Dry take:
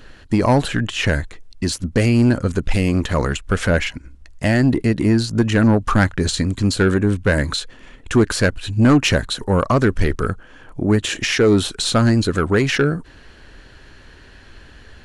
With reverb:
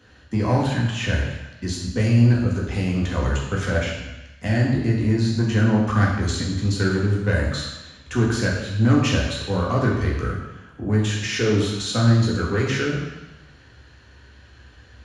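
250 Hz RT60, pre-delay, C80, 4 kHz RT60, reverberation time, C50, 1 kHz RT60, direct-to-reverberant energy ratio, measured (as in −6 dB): 0.95 s, 3 ms, 4.5 dB, 1.1 s, 1.0 s, 2.5 dB, 1.1 s, −3.5 dB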